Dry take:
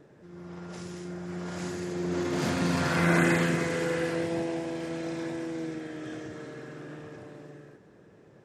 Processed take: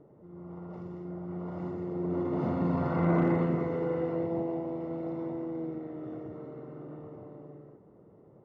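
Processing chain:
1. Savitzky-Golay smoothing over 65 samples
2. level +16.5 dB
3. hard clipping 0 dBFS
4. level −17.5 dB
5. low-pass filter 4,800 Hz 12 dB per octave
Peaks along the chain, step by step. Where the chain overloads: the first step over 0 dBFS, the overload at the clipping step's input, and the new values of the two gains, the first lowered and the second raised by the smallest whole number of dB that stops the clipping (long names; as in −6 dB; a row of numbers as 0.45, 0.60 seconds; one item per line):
−12.5, +4.0, 0.0, −17.5, −17.5 dBFS
step 2, 4.0 dB
step 2 +12.5 dB, step 4 −13.5 dB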